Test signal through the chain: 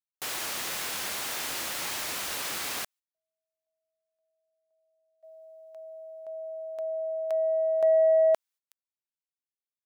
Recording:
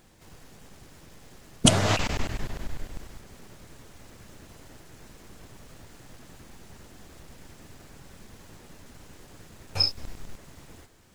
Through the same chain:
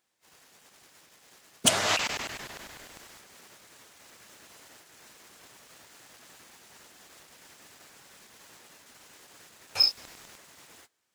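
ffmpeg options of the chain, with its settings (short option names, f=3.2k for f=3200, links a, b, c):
-af "highpass=f=1.2k:p=1,agate=range=-18dB:threshold=-56dB:ratio=16:detection=peak,asoftclip=type=tanh:threshold=-15dB,volume=3.5dB"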